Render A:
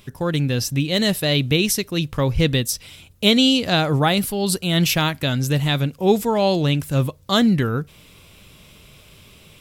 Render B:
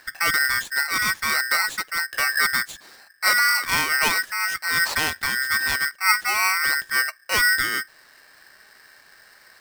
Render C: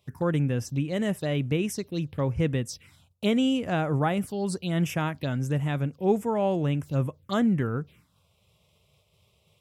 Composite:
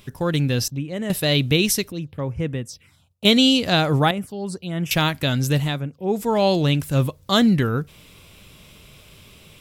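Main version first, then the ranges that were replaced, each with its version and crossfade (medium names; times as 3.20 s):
A
0.68–1.10 s: from C
1.92–3.25 s: from C
4.11–4.91 s: from C
5.70–6.22 s: from C, crossfade 0.24 s
not used: B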